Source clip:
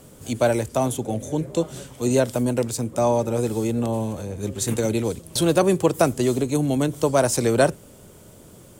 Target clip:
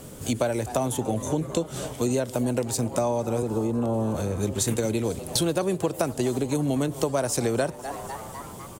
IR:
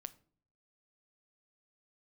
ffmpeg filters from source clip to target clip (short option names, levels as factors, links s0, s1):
-filter_complex "[0:a]asettb=1/sr,asplit=3[s0][s1][s2];[s0]atrim=end=3.424[s3];[s1]atrim=start=3.42:end=4.15,asetpts=PTS-STARTPTS,afade=t=in:d=0.004:c=qsin,afade=t=out:st=0.726:d=0.004:c=qsin,acrossover=split=230|950[s4][s5][s6];[s4]acompressor=threshold=0.0316:ratio=4[s7];[s5]acompressor=threshold=0.0562:ratio=4[s8];[s6]acompressor=threshold=0.00316:ratio=4[s9];[s7][s8][s9]amix=inputs=3:normalize=0[s10];[s2]atrim=start=4.146[s11];[s3][s10]acrossfade=d=0.004:c1=hsin:c2=qsin[s12];[s12][s11]acrossfade=d=0.004:c1=qsin:c2=hsin,asplit=6[s13][s14][s15][s16][s17][s18];[s14]adelay=251,afreqshift=140,volume=0.0891[s19];[s15]adelay=502,afreqshift=280,volume=0.0562[s20];[s16]adelay=753,afreqshift=420,volume=0.0355[s21];[s17]adelay=1004,afreqshift=560,volume=0.0224[s22];[s18]adelay=1255,afreqshift=700,volume=0.014[s23];[s13][s19][s20][s21][s22][s23]amix=inputs=6:normalize=0,acompressor=threshold=0.0447:ratio=6,volume=1.78"